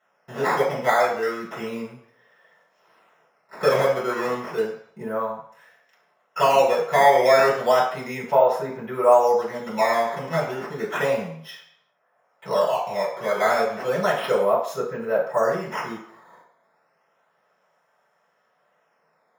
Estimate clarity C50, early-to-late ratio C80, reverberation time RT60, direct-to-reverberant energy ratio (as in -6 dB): 5.5 dB, 8.5 dB, 0.55 s, -6.5 dB